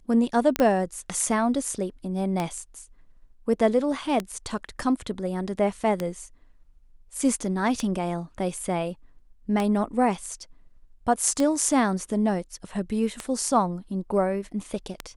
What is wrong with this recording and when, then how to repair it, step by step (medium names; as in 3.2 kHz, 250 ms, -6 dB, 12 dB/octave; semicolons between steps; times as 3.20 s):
tick 33 1/3 rpm -12 dBFS
0.56 s: pop -8 dBFS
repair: de-click